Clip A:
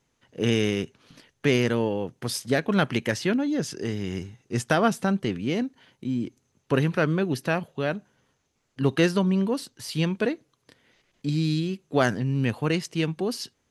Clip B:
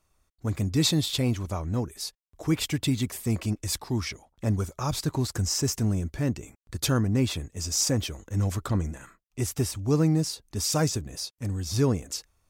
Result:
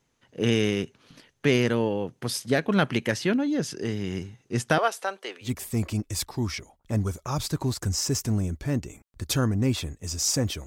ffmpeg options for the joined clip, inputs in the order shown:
-filter_complex "[0:a]asettb=1/sr,asplit=3[a][b][c];[a]atrim=end=4.784[d];[b]atrim=start=4.78:end=5.51,asetpts=PTS-STARTPTS,afade=t=in:d=0.004:c=qsin,afade=t=out:st=0.726:d=0.004:c=qsin,highpass=f=490:w=0.5412,highpass=f=490:w=1.3066[e];[c]atrim=start=5.506[f];[d][e]acrossfade=d=0.004:c1=hsin:c2=qsin[g];[g][f]acrossfade=d=0.004:c1=qsin:c2=hsin,apad=whole_dur=10.66,atrim=end=10.66,atrim=end=5.51,asetpts=PTS-STARTPTS[h];[1:a]atrim=start=2.94:end=8.19,asetpts=PTS-STARTPTS[i];[h][i]acrossfade=d=0.1:c1=tri:c2=tri"

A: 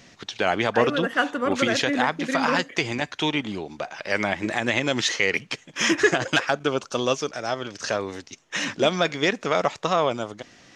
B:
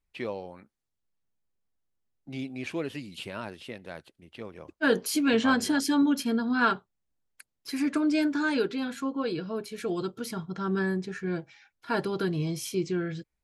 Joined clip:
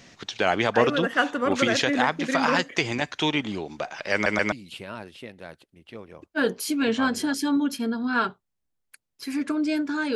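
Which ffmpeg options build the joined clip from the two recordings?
-filter_complex "[0:a]apad=whole_dur=10.15,atrim=end=10.15,asplit=3[a][b][c];[a]atrim=end=4.262[d];[b]atrim=start=4.128:end=4.262[e];[c]atrim=start=4.128:end=4.262[f];[1:a]atrim=start=2.978:end=8.61[g];[d][e]acrossfade=d=0.004:c1=hsin:c2=hsin[h];[h][f]acrossfade=d=0.004:c1=hsin:c2=hsin[i];[i][g]acrossfade=d=0.004:c1=hsin:c2=hsin"

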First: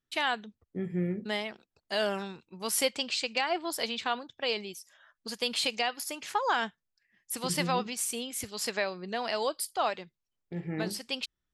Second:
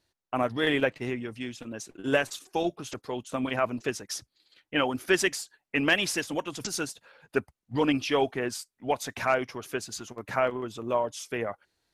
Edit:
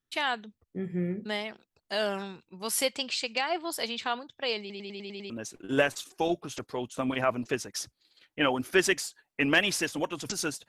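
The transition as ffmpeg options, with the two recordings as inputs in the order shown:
-filter_complex "[0:a]apad=whole_dur=10.68,atrim=end=10.68,asplit=7[a][b][c][d][e][f][g];[a]atrim=end=4.702[h];[b]atrim=start=4.598:end=4.702[i];[c]atrim=start=4.598:end=4.702[j];[d]atrim=start=4.598:end=4.702[k];[e]atrim=start=4.598:end=4.702[l];[f]atrim=start=4.598:end=4.702[m];[g]atrim=start=4.598:end=4.702[n];[1:a]atrim=start=1.648:end=7.03[o];[h][i]acrossfade=d=0.004:c1=hsin:c2=hsin[p];[p][j]acrossfade=d=0.004:c1=hsin:c2=hsin[q];[q][k]acrossfade=d=0.004:c1=hsin:c2=hsin[r];[r][l]acrossfade=d=0.004:c1=hsin:c2=hsin[s];[s][m]acrossfade=d=0.004:c1=hsin:c2=hsin[t];[t][n]acrossfade=d=0.004:c1=hsin:c2=hsin[u];[u][o]acrossfade=d=0.004:c1=hsin:c2=hsin"

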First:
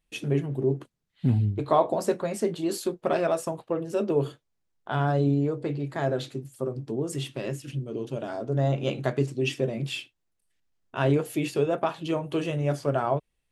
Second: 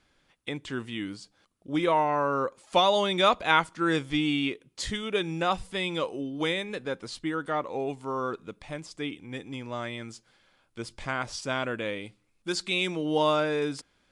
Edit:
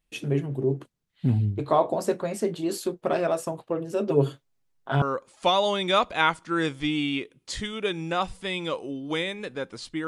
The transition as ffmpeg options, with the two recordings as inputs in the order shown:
-filter_complex "[0:a]asettb=1/sr,asplit=3[a][b][c];[a]atrim=end=4.074[d];[b]atrim=start=4.07:end=5.02,asetpts=PTS-STARTPTS,afade=t=in:d=0.004:c=qsin,afade=t=out:st=0.946:d=0.004:c=qsin,aecho=1:1:7.4:0.89,atrim=end_sample=41895[e];[c]atrim=start=5.016[f];[d][e]acrossfade=d=0.004:c1=hsin:c2=qsin[g];[g][f]acrossfade=d=0.004:c1=qsin:c2=hsin,apad=whole_dur=10.07,atrim=end=10.07,atrim=end=5.022[h];[1:a]atrim=start=2.318:end=7.37[i];[h][i]acrossfade=d=0.004:c1=hsin:c2=hsin"

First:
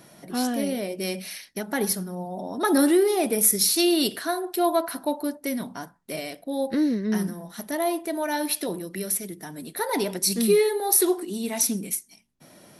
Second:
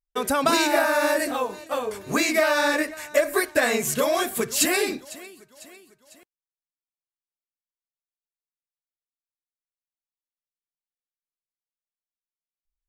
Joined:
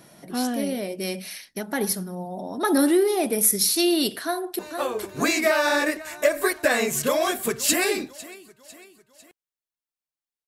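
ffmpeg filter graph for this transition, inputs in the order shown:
-filter_complex "[0:a]apad=whole_dur=10.47,atrim=end=10.47,atrim=end=4.592[a];[1:a]atrim=start=1.508:end=7.39[b];[a][b]acrossfade=d=0.004:c1=hsin:c2=hsin,asplit=2[c][d];[d]afade=t=in:st=4.24:d=0.01,afade=t=out:st=4.59:d=0.01,aecho=0:1:460|920|1380|1840|2300|2760|3220|3680:0.446684|0.26801|0.160806|0.0964837|0.0578902|0.0347341|0.0208405|0.0125043[e];[c][e]amix=inputs=2:normalize=0"

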